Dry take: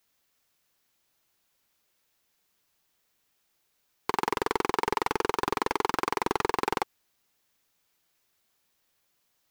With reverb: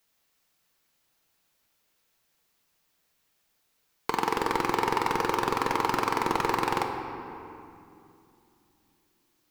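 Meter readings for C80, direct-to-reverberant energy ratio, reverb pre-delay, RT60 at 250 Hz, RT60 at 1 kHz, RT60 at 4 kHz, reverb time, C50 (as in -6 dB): 6.0 dB, 3.0 dB, 4 ms, 3.8 s, 2.6 s, 1.7 s, 2.7 s, 5.0 dB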